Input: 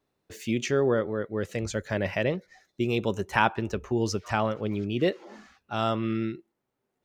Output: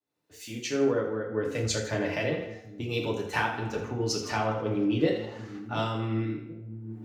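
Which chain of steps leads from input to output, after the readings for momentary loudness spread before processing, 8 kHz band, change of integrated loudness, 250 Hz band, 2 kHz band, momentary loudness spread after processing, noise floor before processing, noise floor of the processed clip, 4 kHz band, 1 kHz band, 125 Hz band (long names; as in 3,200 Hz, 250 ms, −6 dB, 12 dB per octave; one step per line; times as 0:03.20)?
8 LU, +4.0 dB, −1.5 dB, −1.0 dB, −2.0 dB, 14 LU, −81 dBFS, −52 dBFS, +1.0 dB, −3.5 dB, −0.5 dB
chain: fade in at the beginning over 1.79 s
in parallel at +1.5 dB: upward compression, threshold −28 dBFS
on the sum: dynamic equaliser 4,300 Hz, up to +5 dB, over −46 dBFS, Q 3.5
on a send: echo with a time of its own for lows and highs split 320 Hz, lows 732 ms, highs 81 ms, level −10 dB
on the sum: downward compressor 6 to 1, threshold −21 dBFS, peak gain reduction 12 dB
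high-pass filter 79 Hz
feedback delay network reverb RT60 0.66 s, low-frequency decay 0.8×, high-frequency decay 0.75×, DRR −1 dB
multiband upward and downward expander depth 70%
level −6.5 dB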